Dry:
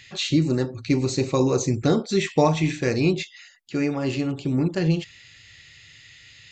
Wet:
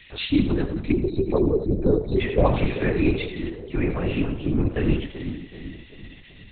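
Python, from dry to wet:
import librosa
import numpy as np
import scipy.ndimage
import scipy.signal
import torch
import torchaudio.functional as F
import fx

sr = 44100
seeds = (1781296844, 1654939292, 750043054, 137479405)

y = fx.envelope_sharpen(x, sr, power=2.0, at=(0.91, 2.45))
y = fx.echo_split(y, sr, split_hz=500.0, low_ms=382, high_ms=89, feedback_pct=52, wet_db=-10)
y = fx.lpc_vocoder(y, sr, seeds[0], excitation='whisper', order=8)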